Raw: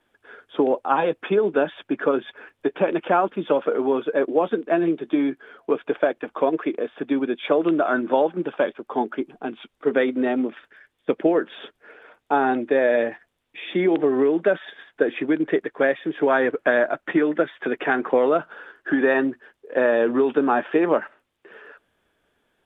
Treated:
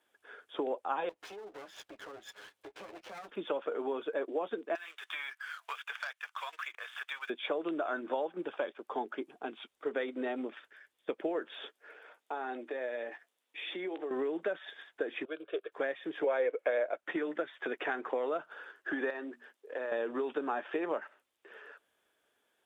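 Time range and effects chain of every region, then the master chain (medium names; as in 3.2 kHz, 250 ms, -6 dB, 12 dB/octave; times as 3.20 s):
1.09–3.29 s: comb filter that takes the minimum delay 9.6 ms + compression 4:1, threshold -38 dBFS
4.75–7.30 s: high-pass 1.2 kHz 24 dB/octave + waveshaping leveller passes 1 + three bands compressed up and down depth 100%
11.47–14.11 s: compression 2:1, threshold -31 dBFS + high-pass 230 Hz + doubling 16 ms -13 dB
15.25–15.72 s: high-pass 260 Hz + static phaser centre 1.3 kHz, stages 8 + three bands expanded up and down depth 100%
16.24–16.97 s: bass shelf 230 Hz -10 dB + small resonant body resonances 510/2200 Hz, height 15 dB, ringing for 25 ms
19.10–19.92 s: high-pass 190 Hz 24 dB/octave + hum notches 60/120/180/240/300 Hz + compression, threshold -24 dBFS
whole clip: high-pass 47 Hz; tone controls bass -14 dB, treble +7 dB; compression 2.5:1, threshold -26 dBFS; trim -7 dB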